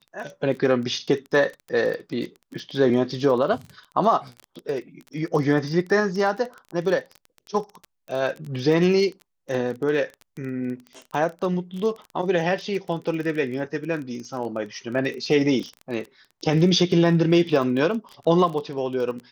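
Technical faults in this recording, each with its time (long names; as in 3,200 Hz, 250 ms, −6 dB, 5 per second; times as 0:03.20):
surface crackle 22 per second −30 dBFS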